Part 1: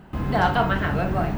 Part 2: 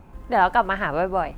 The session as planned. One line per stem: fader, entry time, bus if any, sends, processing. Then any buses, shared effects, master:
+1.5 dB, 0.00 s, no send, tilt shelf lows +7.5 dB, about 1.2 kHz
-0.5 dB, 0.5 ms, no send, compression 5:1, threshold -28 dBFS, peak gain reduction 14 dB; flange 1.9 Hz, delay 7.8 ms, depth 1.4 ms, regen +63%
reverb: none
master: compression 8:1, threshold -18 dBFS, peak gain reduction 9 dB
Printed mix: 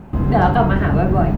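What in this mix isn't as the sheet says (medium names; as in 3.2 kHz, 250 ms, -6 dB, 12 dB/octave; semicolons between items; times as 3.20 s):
stem 2 -0.5 dB -> +7.0 dB; master: missing compression 8:1, threshold -18 dBFS, peak gain reduction 9 dB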